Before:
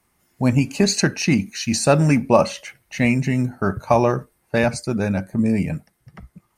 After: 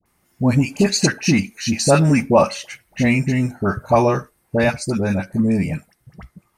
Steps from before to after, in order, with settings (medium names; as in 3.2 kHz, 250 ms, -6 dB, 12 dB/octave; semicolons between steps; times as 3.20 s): phase dispersion highs, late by 58 ms, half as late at 1.1 kHz; trim +1.5 dB